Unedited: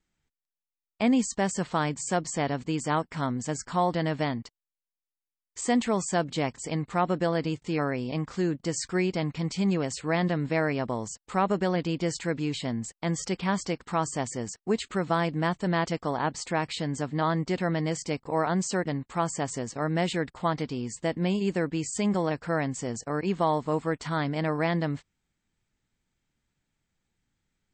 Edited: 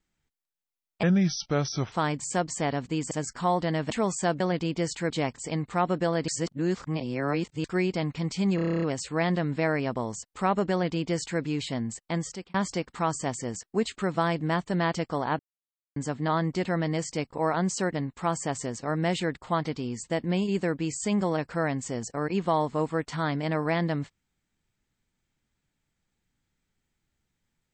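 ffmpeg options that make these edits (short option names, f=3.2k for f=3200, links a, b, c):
-filter_complex "[0:a]asplit=21[a][b][c][d][e][f][g][h][i][j][k][l][m][n][o][p][q][r][s][t][u];[a]atrim=end=1.034[v];[b]atrim=start=1.03:end=1.69,asetpts=PTS-STARTPTS,asetrate=32634,aresample=44100,atrim=end_sample=39332,asetpts=PTS-STARTPTS[w];[c]atrim=start=1.686:end=2.882[x];[d]atrim=start=3.428:end=4.222[y];[e]atrim=start=5.798:end=6.302[z];[f]atrim=start=11.638:end=12.342[aa];[g]atrim=start=6.298:end=7.482[ab];[h]atrim=start=7.478:end=8.842,asetpts=PTS-STARTPTS,areverse[ac];[i]atrim=start=8.838:end=9.782[ad];[j]atrim=start=9.748:end=9.782[ae];[k]atrim=start=9.748:end=9.782[af];[l]atrim=start=9.748:end=9.782[ag];[m]atrim=start=9.748:end=9.782[ah];[n]atrim=start=9.748:end=9.782[ai];[o]atrim=start=9.748:end=9.782[aj];[p]atrim=start=9.748:end=9.782[ak];[q]atrim=start=9.748:end=9.782[al];[r]atrim=start=9.748:end=13.47,asetpts=PTS-STARTPTS,afade=t=out:st=3.302:d=0.42[am];[s]atrim=start=13.47:end=16.32,asetpts=PTS-STARTPTS,afade=t=in:d=0.004:c=hsin,afade=t=out:st=2.846:d=0.004:c=hsin[an];[t]atrim=start=16.32:end=16.89,asetpts=PTS-STARTPTS,volume=0[ao];[u]atrim=start=16.89,asetpts=PTS-STARTPTS,afade=t=in:d=0.004:c=hsin[ap];[v][w]acrossfade=d=0.004:c1=hsin:c2=hsin[aq];[aq][x]acrossfade=d=0.004:c1=hsin:c2=hsin[ar];[ar][y]acrossfade=d=0.004:c1=hsin:c2=hsin[as];[as][z]acrossfade=d=0.004:c1=hsin:c2=hsin[at];[at][aa]acrossfade=d=0.004:c1=hsin:c2=hsin[au];[au][ab]acrossfade=d=0.004:c1=hsin:c2=hsin[av];[av][ac]acrossfade=d=0.004:c1=hsin:c2=hsin[aw];[aw][ad]acrossfade=d=0.004:c1=hsin:c2=hsin[ax];[ax][ae]acrossfade=d=0.004:c1=hsin:c2=hsin[ay];[ay][af]acrossfade=d=0.004:c1=hsin:c2=hsin[az];[az][ag]acrossfade=d=0.004:c1=hsin:c2=hsin[ba];[ba][ah]acrossfade=d=0.004:c1=hsin:c2=hsin[bb];[bb][ai]acrossfade=d=0.004:c1=hsin:c2=hsin[bc];[bc][aj]acrossfade=d=0.004:c1=hsin:c2=hsin[bd];[bd][ak]acrossfade=d=0.004:c1=hsin:c2=hsin[be];[be][al]acrossfade=d=0.004:c1=hsin:c2=hsin[bf];[am][an][ao][ap]concat=n=4:v=0:a=1[bg];[bf][bg]acrossfade=d=0.004:c1=hsin:c2=hsin"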